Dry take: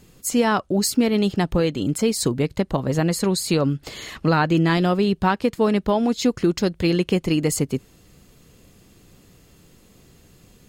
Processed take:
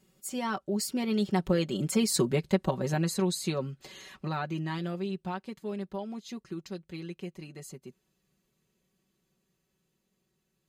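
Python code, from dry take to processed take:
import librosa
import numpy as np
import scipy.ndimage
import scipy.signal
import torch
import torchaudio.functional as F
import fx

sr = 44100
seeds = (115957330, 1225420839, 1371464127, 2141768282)

y = fx.doppler_pass(x, sr, speed_mps=14, closest_m=10.0, pass_at_s=2.18)
y = fx.highpass(y, sr, hz=110.0, slope=6)
y = y + 0.74 * np.pad(y, (int(5.3 * sr / 1000.0), 0))[:len(y)]
y = F.gain(torch.from_numpy(y), -5.5).numpy()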